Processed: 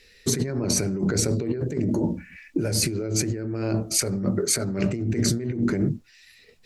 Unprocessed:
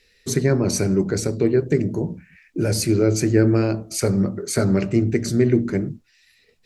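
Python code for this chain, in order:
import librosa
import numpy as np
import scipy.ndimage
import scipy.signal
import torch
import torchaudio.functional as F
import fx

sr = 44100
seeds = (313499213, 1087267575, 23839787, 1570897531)

y = fx.comb(x, sr, ms=3.5, depth=0.61, at=(1.89, 2.58))
y = fx.over_compress(y, sr, threshold_db=-25.0, ratio=-1.0)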